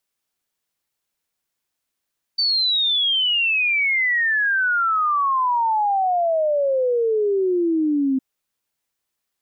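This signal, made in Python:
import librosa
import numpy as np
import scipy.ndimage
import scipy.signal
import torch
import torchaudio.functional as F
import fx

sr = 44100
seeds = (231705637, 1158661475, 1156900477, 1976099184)

y = fx.ess(sr, length_s=5.81, from_hz=4600.0, to_hz=260.0, level_db=-16.5)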